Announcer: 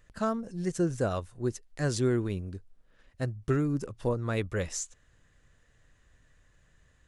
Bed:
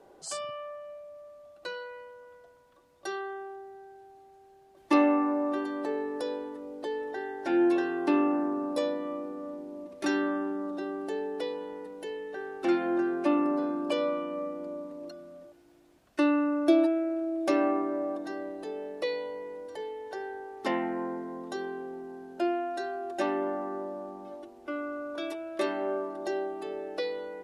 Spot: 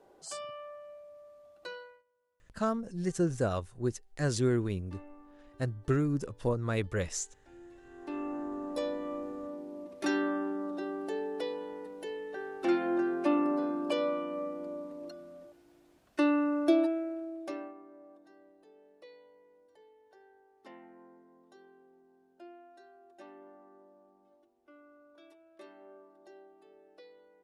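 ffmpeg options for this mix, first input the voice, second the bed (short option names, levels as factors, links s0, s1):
-filter_complex "[0:a]adelay=2400,volume=0.891[s0];[1:a]volume=12.6,afade=t=out:st=1.73:d=0.3:silence=0.0630957,afade=t=in:st=7.82:d=1.38:silence=0.0446684,afade=t=out:st=16.59:d=1.15:silence=0.0944061[s1];[s0][s1]amix=inputs=2:normalize=0"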